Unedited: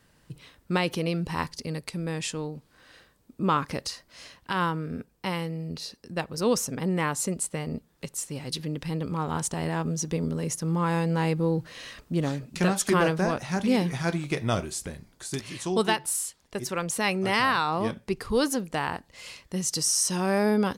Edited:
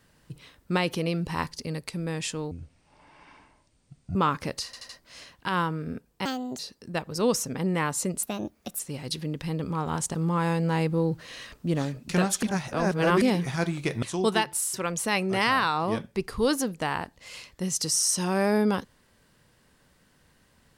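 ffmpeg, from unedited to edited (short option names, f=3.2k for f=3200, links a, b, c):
-filter_complex "[0:a]asplit=15[a][b][c][d][e][f][g][h][i][j][k][l][m][n][o];[a]atrim=end=2.514[p];[b]atrim=start=2.51:end=3.43,asetpts=PTS-STARTPTS,asetrate=24696,aresample=44100[q];[c]atrim=start=3.426:end=4.012[r];[d]atrim=start=3.928:end=4.012[s];[e]atrim=start=3.928:end=4.012[t];[f]atrim=start=3.928:end=5.294[u];[g]atrim=start=5.29:end=5.81,asetpts=PTS-STARTPTS,asetrate=68355,aresample=44100[v];[h]atrim=start=5.806:end=7.454[w];[i]atrim=start=7.45:end=8.21,asetpts=PTS-STARTPTS,asetrate=59094,aresample=44100[x];[j]atrim=start=8.206:end=9.562[y];[k]atrim=start=10.608:end=12.892[z];[l]atrim=start=12.888:end=13.682,asetpts=PTS-STARTPTS,areverse[aa];[m]atrim=start=13.678:end=14.492[ab];[n]atrim=start=15.548:end=16.262[ac];[o]atrim=start=16.658[ad];[p][q]acrossfade=d=0.004:c1=hsin:c2=hsin[ae];[ae][r]acrossfade=d=0.004:c1=hsin:c2=hsin[af];[af][s]acrossfade=d=0.004:c1=hsin:c2=hsin[ag];[ag][t]acrossfade=d=0.004:c1=hsin:c2=hsin[ah];[ah][u]acrossfade=d=0.004:c1=hsin:c2=hsin[ai];[ai][v]acrossfade=d=0.004:c1=hsin:c2=hsin[aj];[aj][w]acrossfade=d=0.004:c1=hsin:c2=hsin[ak];[ak][x]acrossfade=d=0.004:c1=hsin:c2=hsin[al];[al][y]acrossfade=d=0.004:c1=hsin:c2=hsin[am];[am][z]acrossfade=d=0.004:c1=hsin:c2=hsin[an];[an][aa]acrossfade=d=0.004:c1=hsin:c2=hsin[ao];[ao][ab]acrossfade=d=0.004:c1=hsin:c2=hsin[ap];[ap][ac]acrossfade=d=0.004:c1=hsin:c2=hsin[aq];[aq][ad]acrossfade=d=0.004:c1=hsin:c2=hsin"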